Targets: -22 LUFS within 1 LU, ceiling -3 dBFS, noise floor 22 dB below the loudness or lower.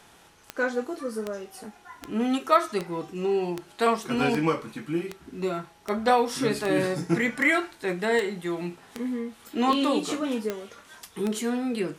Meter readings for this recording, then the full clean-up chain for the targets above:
clicks found 15; loudness -27.0 LUFS; peak level -6.5 dBFS; loudness target -22.0 LUFS
-> de-click; trim +5 dB; peak limiter -3 dBFS

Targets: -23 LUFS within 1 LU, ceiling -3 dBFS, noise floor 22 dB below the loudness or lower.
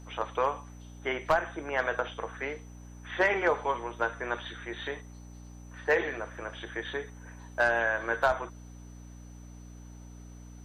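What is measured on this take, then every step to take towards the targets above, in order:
hum 60 Hz; highest harmonic 300 Hz; hum level -45 dBFS; steady tone 6 kHz; tone level -60 dBFS; loudness -31.0 LUFS; peak level -14.5 dBFS; loudness target -23.0 LUFS
-> de-hum 60 Hz, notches 5; band-stop 6 kHz, Q 30; trim +8 dB

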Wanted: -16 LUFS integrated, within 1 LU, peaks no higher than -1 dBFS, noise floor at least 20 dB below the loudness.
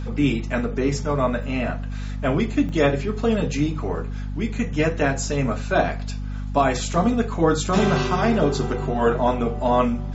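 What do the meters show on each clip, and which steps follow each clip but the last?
dropouts 2; longest dropout 1.3 ms; hum 50 Hz; highest harmonic 250 Hz; hum level -26 dBFS; loudness -22.5 LUFS; peak level -5.0 dBFS; loudness target -16.0 LUFS
-> interpolate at 1.43/2.69 s, 1.3 ms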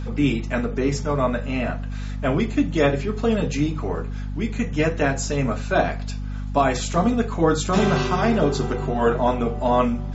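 dropouts 0; hum 50 Hz; highest harmonic 250 Hz; hum level -26 dBFS
-> hum notches 50/100/150/200/250 Hz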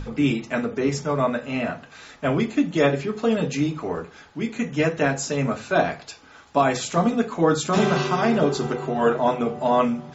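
hum not found; loudness -23.0 LUFS; peak level -5.5 dBFS; loudness target -16.0 LUFS
-> trim +7 dB; peak limiter -1 dBFS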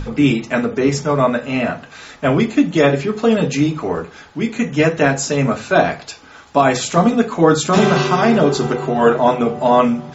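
loudness -16.0 LUFS; peak level -1.0 dBFS; noise floor -42 dBFS

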